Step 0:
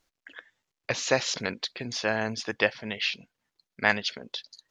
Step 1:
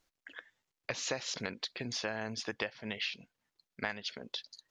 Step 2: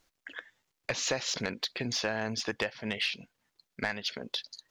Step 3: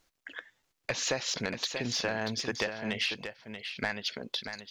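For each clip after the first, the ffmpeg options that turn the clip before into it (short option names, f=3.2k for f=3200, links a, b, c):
-af "acompressor=threshold=-30dB:ratio=6,volume=-3dB"
-af "asoftclip=type=tanh:threshold=-25dB,volume=6dB"
-af "aecho=1:1:634:0.376"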